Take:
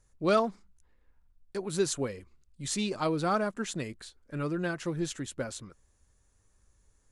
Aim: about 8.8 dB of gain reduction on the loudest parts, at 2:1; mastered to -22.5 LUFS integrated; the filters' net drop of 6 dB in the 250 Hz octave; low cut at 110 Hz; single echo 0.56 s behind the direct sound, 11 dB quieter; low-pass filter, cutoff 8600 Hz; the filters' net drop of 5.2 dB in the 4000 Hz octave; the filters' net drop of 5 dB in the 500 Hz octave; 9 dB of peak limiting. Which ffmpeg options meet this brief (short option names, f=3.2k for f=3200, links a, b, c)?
-af "highpass=110,lowpass=8.6k,equalizer=f=250:t=o:g=-7,equalizer=f=500:t=o:g=-4.5,equalizer=f=4k:t=o:g=-6,acompressor=threshold=-39dB:ratio=2,alimiter=level_in=8dB:limit=-24dB:level=0:latency=1,volume=-8dB,aecho=1:1:560:0.282,volume=20.5dB"